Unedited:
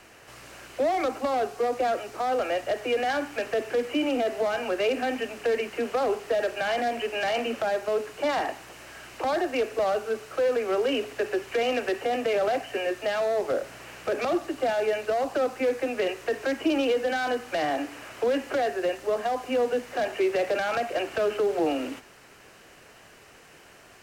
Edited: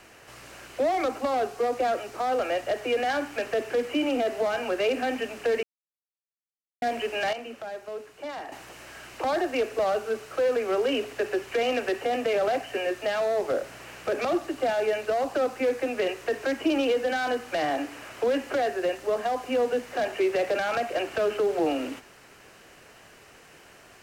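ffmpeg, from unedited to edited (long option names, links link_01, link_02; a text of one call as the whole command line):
ffmpeg -i in.wav -filter_complex "[0:a]asplit=5[link_01][link_02][link_03][link_04][link_05];[link_01]atrim=end=5.63,asetpts=PTS-STARTPTS,afade=type=out:start_time=5.626:duration=0.004:curve=hsin[link_06];[link_02]atrim=start=5.63:end=6.82,asetpts=PTS-STARTPTS,volume=0[link_07];[link_03]atrim=start=6.82:end=7.332,asetpts=PTS-STARTPTS,afade=type=in:duration=0.004:curve=hsin[link_08];[link_04]atrim=start=7.328:end=8.522,asetpts=PTS-STARTPTS,volume=-10dB[link_09];[link_05]atrim=start=8.518[link_10];[link_06][link_07][link_08]concat=n=3:v=0:a=1[link_11];[link_11][link_09]acrossfade=duration=0.004:curve1=hsin:curve2=hsin[link_12];[link_12][link_10]acrossfade=duration=0.004:curve1=hsin:curve2=hsin" out.wav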